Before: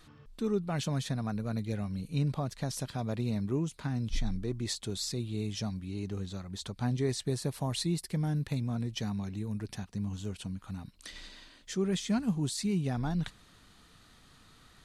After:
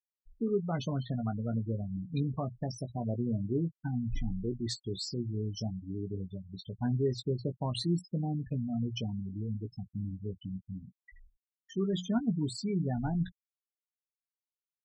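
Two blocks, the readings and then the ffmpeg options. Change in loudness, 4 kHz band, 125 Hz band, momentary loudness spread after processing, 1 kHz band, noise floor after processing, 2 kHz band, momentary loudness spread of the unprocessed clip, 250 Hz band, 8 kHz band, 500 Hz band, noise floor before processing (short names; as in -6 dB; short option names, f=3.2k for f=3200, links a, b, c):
-0.5 dB, -3.5 dB, -0.5 dB, 9 LU, -1.5 dB, under -85 dBFS, -7.0 dB, 9 LU, 0.0 dB, -9.0 dB, +0.5 dB, -60 dBFS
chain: -filter_complex "[0:a]bandreject=f=60:t=h:w=6,bandreject=f=120:t=h:w=6,bandreject=f=180:t=h:w=6,afftfilt=real='re*gte(hypot(re,im),0.0316)':imag='im*gte(hypot(re,im),0.0316)':win_size=1024:overlap=0.75,asplit=2[a][b];[b]adelay=17,volume=-8dB[c];[a][c]amix=inputs=2:normalize=0"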